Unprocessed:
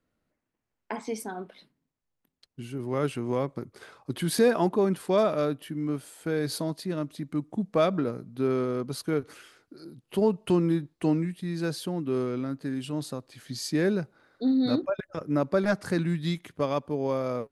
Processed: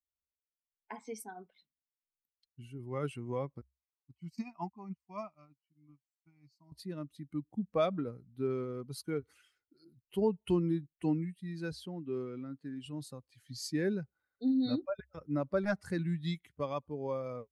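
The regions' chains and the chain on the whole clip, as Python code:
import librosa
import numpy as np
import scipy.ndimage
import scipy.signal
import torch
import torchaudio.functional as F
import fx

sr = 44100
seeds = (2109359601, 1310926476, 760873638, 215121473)

y = fx.chain(x, sr, fx.fixed_phaser(hz=2400.0, stages=8),
    fx.upward_expand(threshold_db=-39.0, expansion=2.5), at=(3.61, 6.72))
y = fx.chain(y, sr, fx.highpass(hz=120.0, slope=12),
    fx.high_shelf(hz=9700.0, db=-10.5), at=(11.72, 12.86))
y = fx.bin_expand(y, sr, power=1.5)
y = fx.peak_eq(y, sr, hz=66.0, db=13.0, octaves=0.37)
y = y * librosa.db_to_amplitude(-5.0)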